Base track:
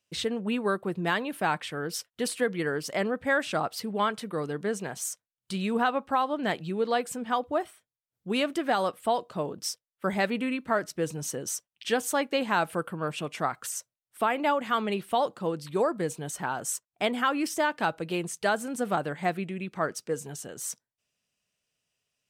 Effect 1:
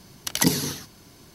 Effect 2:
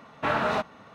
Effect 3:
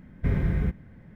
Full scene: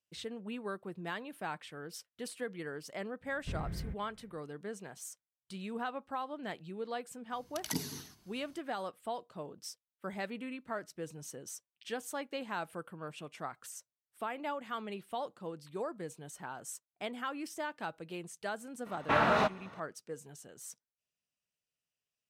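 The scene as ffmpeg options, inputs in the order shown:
-filter_complex "[0:a]volume=-12.5dB[a];[1:a]bandreject=f=510:w=5.8[b];[3:a]atrim=end=1.15,asetpts=PTS-STARTPTS,volume=-15dB,afade=t=in:d=0.004:c=hsin,afade=t=out:st=1.146:d=0.004:c=hsin,adelay=3230[c];[b]atrim=end=1.34,asetpts=PTS-STARTPTS,volume=-15.5dB,afade=t=in:d=0.05,afade=t=out:st=1.29:d=0.05,adelay=7290[d];[2:a]atrim=end=0.94,asetpts=PTS-STARTPTS,volume=-1.5dB,afade=t=in:d=0.004:c=hsin,afade=t=out:st=0.936:d=0.004:c=hsin,adelay=18860[e];[a][c][d][e]amix=inputs=4:normalize=0"

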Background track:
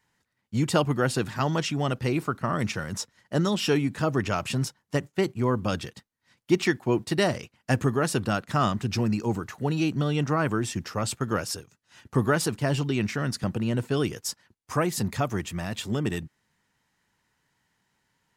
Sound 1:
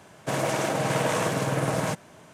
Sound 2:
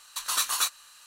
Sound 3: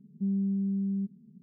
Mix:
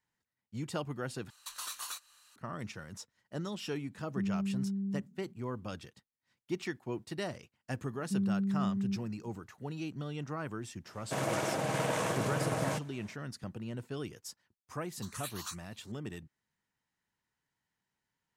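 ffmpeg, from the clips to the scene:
-filter_complex "[2:a]asplit=2[a][b];[3:a]asplit=2[c][d];[0:a]volume=-14dB[e];[a]alimiter=limit=-19.5dB:level=0:latency=1:release=207[f];[b]asplit=2[g][h];[h]afreqshift=2.5[i];[g][i]amix=inputs=2:normalize=1[j];[e]asplit=2[k][l];[k]atrim=end=1.304[m];[f]atrim=end=1.06,asetpts=PTS-STARTPTS,volume=-10dB[n];[l]atrim=start=2.356[o];[c]atrim=end=1.42,asetpts=PTS-STARTPTS,volume=-5dB,afade=t=in:d=0.004:c=hsin,afade=t=out:st=1.416:d=0.004:c=hsin,adelay=3950[p];[d]atrim=end=1.42,asetpts=PTS-STARTPTS,volume=-2.5dB,afade=t=in:d=0.004:c=hsin,afade=t=out:st=1.416:d=0.004:c=hsin,adelay=7900[q];[1:a]atrim=end=2.33,asetpts=PTS-STARTPTS,volume=-7dB,afade=t=in:d=0.05,afade=t=out:st=2.28:d=0.05,adelay=10840[r];[j]atrim=end=1.06,asetpts=PTS-STARTPTS,volume=-13.5dB,afade=t=in:d=0.004:c=hsin,afade=t=out:st=1.056:d=0.004:c=hsin,adelay=14860[s];[m][n]acrossfade=d=0.004:c1=hsin:c2=hsin[t];[t][o]acrossfade=d=0.004:c1=hsin:c2=hsin[u];[u][p][q][r][s]amix=inputs=5:normalize=0"

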